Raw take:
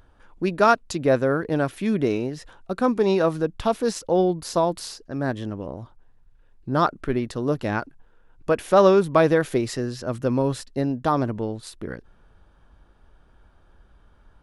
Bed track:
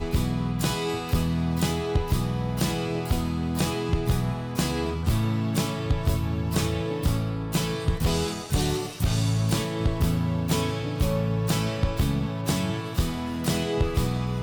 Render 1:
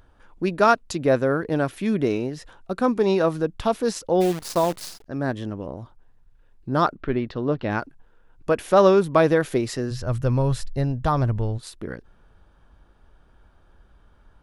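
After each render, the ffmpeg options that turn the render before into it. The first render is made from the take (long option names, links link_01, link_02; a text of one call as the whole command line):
ffmpeg -i in.wav -filter_complex "[0:a]asplit=3[link_01][link_02][link_03];[link_01]afade=type=out:start_time=4.2:duration=0.02[link_04];[link_02]acrusher=bits=6:dc=4:mix=0:aa=0.000001,afade=type=in:start_time=4.2:duration=0.02,afade=type=out:start_time=5.05:duration=0.02[link_05];[link_03]afade=type=in:start_time=5.05:duration=0.02[link_06];[link_04][link_05][link_06]amix=inputs=3:normalize=0,asettb=1/sr,asplit=3[link_07][link_08][link_09];[link_07]atrim=end=6.954[link_10];[link_08]atrim=start=6.95:end=7.71,asetpts=PTS-STARTPTS,afade=type=in:duration=0.004:curve=qsin,afade=type=out:start_time=0.756:duration=0.004:curve=qsin,lowpass=frequency=4100:width=0.5412,lowpass=frequency=4100:width=1.3066[link_11];[link_09]atrim=start=7.706[link_12];[link_10][link_11]acrossfade=duration=0.004:curve1=hsin:curve2=qsin[link_13];[link_13][link_12]acrossfade=duration=0.004:curve1=qsin:curve2=hsin,asplit=3[link_14][link_15][link_16];[link_14]afade=type=out:start_time=9.9:duration=0.02[link_17];[link_15]asubboost=boost=10.5:cutoff=80,afade=type=in:start_time=9.9:duration=0.02,afade=type=out:start_time=11.57:duration=0.02[link_18];[link_16]afade=type=in:start_time=11.57:duration=0.02[link_19];[link_17][link_18][link_19]amix=inputs=3:normalize=0" out.wav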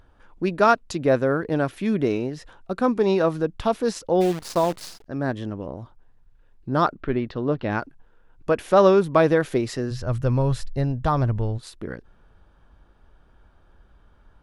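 ffmpeg -i in.wav -af "highshelf=frequency=7800:gain=-6.5" out.wav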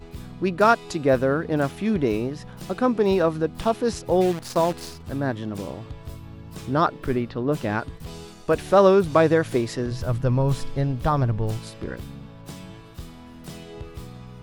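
ffmpeg -i in.wav -i bed.wav -filter_complex "[1:a]volume=-13.5dB[link_01];[0:a][link_01]amix=inputs=2:normalize=0" out.wav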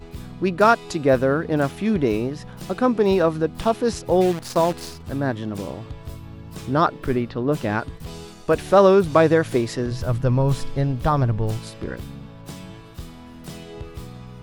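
ffmpeg -i in.wav -af "volume=2dB,alimiter=limit=-3dB:level=0:latency=1" out.wav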